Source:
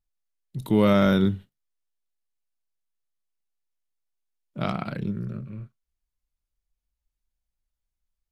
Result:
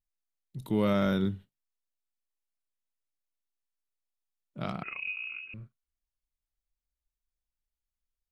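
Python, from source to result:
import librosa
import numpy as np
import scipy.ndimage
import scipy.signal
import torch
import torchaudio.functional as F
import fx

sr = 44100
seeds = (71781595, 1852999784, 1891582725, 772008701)

y = fx.freq_invert(x, sr, carrier_hz=2700, at=(4.83, 5.54))
y = y * 10.0 ** (-7.5 / 20.0)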